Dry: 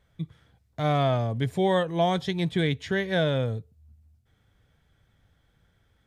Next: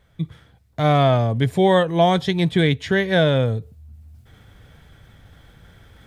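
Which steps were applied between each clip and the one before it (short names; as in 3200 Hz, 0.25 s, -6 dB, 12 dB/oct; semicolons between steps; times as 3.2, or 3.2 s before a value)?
bell 6200 Hz -2 dB; reverse; upward compressor, threshold -44 dBFS; reverse; gain +7.5 dB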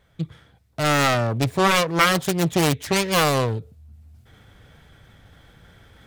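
self-modulated delay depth 0.82 ms; low shelf 140 Hz -4.5 dB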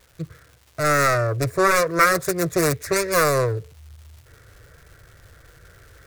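fixed phaser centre 840 Hz, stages 6; crackle 400/s -45 dBFS; gain +3.5 dB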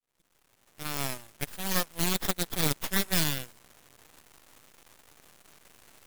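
opening faded in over 1.56 s; brick-wall FIR high-pass 2500 Hz; full-wave rectifier; gain +3 dB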